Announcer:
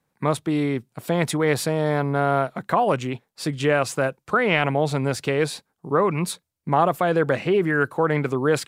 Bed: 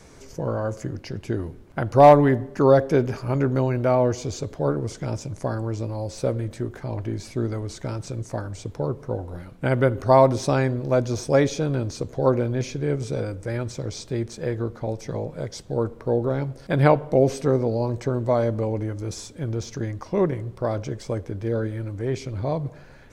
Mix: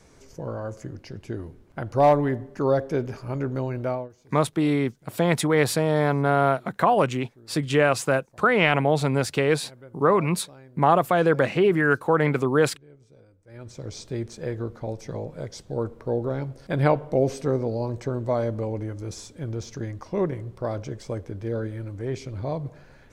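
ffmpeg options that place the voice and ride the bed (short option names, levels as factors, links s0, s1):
-filter_complex "[0:a]adelay=4100,volume=1.06[s0];[1:a]volume=7.5,afade=t=out:st=3.88:d=0.21:silence=0.0891251,afade=t=in:st=13.46:d=0.51:silence=0.0668344[s1];[s0][s1]amix=inputs=2:normalize=0"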